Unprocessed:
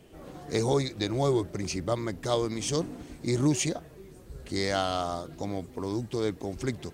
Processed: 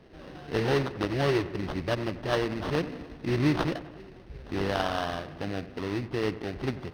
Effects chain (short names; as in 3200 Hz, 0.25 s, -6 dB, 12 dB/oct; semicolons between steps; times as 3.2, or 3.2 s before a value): sample-rate reducer 2300 Hz, jitter 20%; polynomial smoothing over 15 samples; dark delay 91 ms, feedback 62%, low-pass 2500 Hz, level -15 dB